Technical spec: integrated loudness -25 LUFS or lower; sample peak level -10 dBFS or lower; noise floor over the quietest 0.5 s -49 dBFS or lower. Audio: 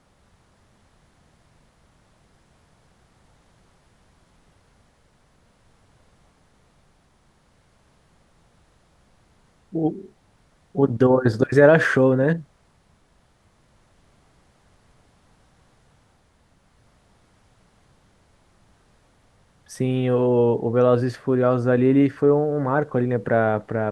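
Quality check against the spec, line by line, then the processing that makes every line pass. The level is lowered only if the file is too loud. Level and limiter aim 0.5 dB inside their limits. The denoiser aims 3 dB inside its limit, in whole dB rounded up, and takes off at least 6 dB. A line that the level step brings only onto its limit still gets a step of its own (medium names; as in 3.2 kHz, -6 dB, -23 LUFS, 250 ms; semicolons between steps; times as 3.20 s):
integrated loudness -20.0 LUFS: fail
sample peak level -3.0 dBFS: fail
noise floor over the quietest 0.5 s -60 dBFS: pass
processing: trim -5.5 dB; peak limiter -10.5 dBFS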